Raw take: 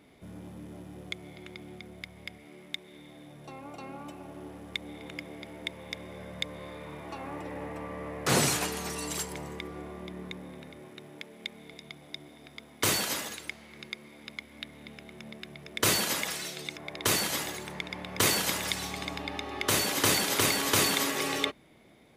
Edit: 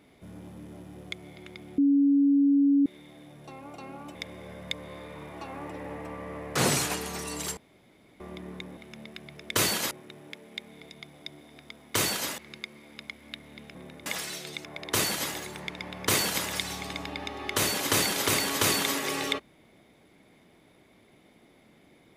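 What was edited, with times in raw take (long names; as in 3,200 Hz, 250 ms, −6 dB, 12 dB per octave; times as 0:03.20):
0:01.78–0:02.86: beep over 281 Hz −18 dBFS
0:04.15–0:05.86: remove
0:09.28–0:09.91: fill with room tone
0:10.48–0:10.79: swap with 0:15.04–0:16.18
0:13.26–0:13.67: remove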